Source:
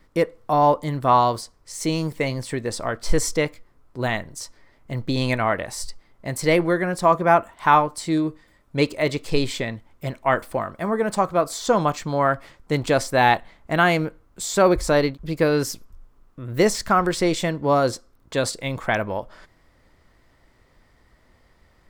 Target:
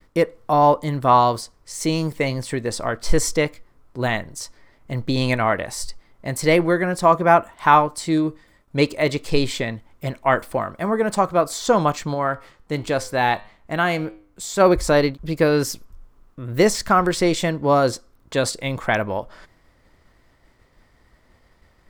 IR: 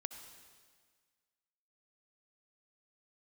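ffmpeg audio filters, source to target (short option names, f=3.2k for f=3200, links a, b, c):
-filter_complex "[0:a]agate=range=-33dB:threshold=-55dB:ratio=3:detection=peak,asplit=3[a][b][c];[a]afade=t=out:st=12.13:d=0.02[d];[b]flanger=delay=9.2:depth=1.2:regen=88:speed=1.7:shape=triangular,afade=t=in:st=12.13:d=0.02,afade=t=out:st=14.59:d=0.02[e];[c]afade=t=in:st=14.59:d=0.02[f];[d][e][f]amix=inputs=3:normalize=0,volume=2dB"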